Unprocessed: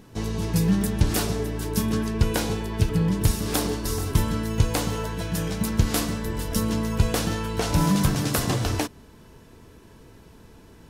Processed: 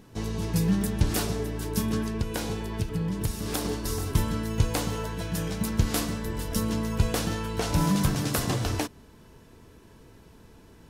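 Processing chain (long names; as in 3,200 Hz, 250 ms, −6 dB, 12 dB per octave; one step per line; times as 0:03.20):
0:02.06–0:03.65: downward compressor 3 to 1, threshold −23 dBFS, peak gain reduction 7.5 dB
level −3 dB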